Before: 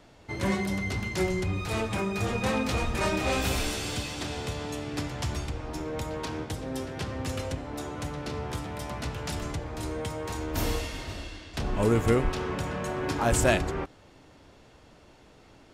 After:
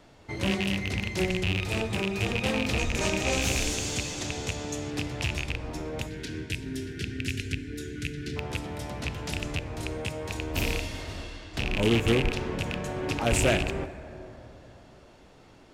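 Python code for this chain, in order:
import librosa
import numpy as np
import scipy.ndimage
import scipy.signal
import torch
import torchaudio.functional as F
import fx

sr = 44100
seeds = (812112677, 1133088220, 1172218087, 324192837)

y = fx.rattle_buzz(x, sr, strikes_db=-29.0, level_db=-15.0)
y = fx.peak_eq(y, sr, hz=6600.0, db=10.5, octaves=0.37, at=(2.79, 4.91))
y = fx.spec_erase(y, sr, start_s=6.07, length_s=2.29, low_hz=470.0, high_hz=1400.0)
y = fx.dynamic_eq(y, sr, hz=1200.0, q=1.4, threshold_db=-45.0, ratio=4.0, max_db=-7)
y = fx.rev_plate(y, sr, seeds[0], rt60_s=3.8, hf_ratio=0.3, predelay_ms=0, drr_db=12.0)
y = fx.doppler_dist(y, sr, depth_ms=0.29)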